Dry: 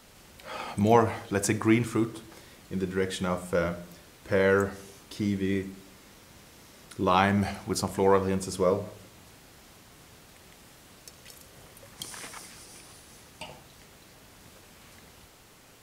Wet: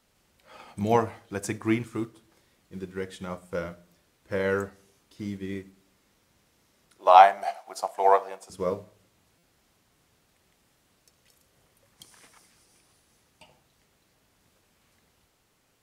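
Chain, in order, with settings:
0:06.98–0:08.50: high-pass with resonance 700 Hz, resonance Q 5.5
buffer that repeats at 0:09.38, samples 256, times 8
expander for the loud parts 1.5 to 1, over −42 dBFS
level +1.5 dB

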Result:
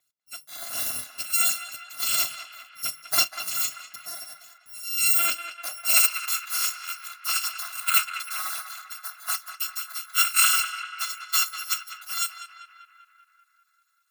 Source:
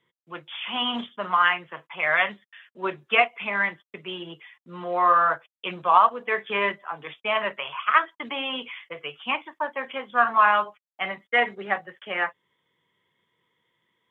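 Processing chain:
samples in bit-reversed order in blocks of 256 samples
feedback echo with a band-pass in the loop 196 ms, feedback 67%, band-pass 1,600 Hz, level −8 dB
high-pass filter sweep 150 Hz → 1,200 Hz, 0:05.07–0:06.22
level −2.5 dB

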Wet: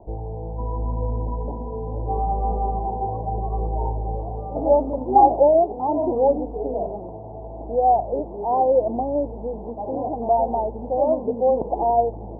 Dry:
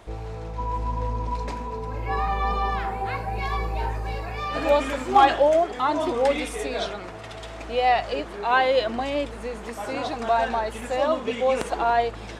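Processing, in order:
Butterworth low-pass 900 Hz 72 dB per octave
level +3.5 dB

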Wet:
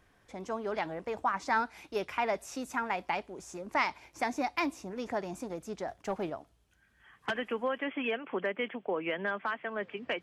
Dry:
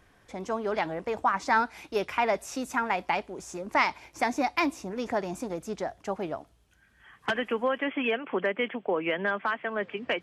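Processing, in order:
0:05.88–0:06.30: leveller curve on the samples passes 1
level −5 dB

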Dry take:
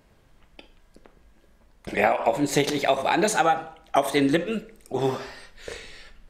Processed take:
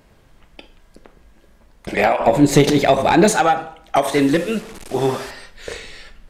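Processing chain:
0:04.07–0:05.31: linear delta modulator 64 kbit/s, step −36.5 dBFS
soft clipping −12.5 dBFS, distortion −18 dB
0:02.20–0:03.32: low-shelf EQ 350 Hz +10 dB
level +6.5 dB

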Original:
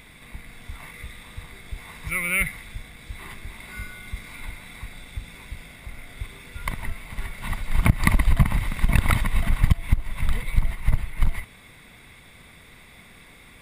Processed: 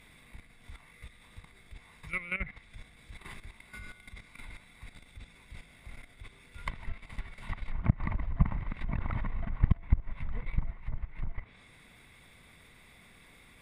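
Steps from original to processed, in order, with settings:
treble cut that deepens with the level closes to 1,500 Hz, closed at −18.5 dBFS
output level in coarse steps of 13 dB
level −5 dB

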